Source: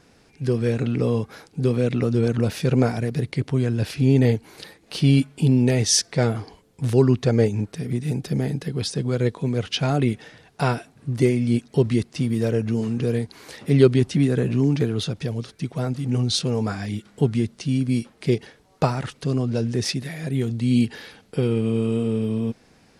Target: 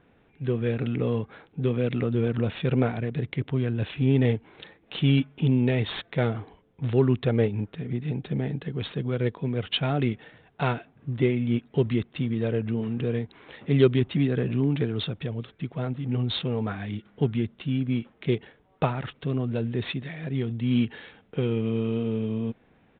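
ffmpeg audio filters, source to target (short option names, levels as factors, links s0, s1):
-af "aemphasis=mode=production:type=75kf,adynamicsmooth=sensitivity=4:basefreq=2300,aresample=8000,aresample=44100,volume=0.596"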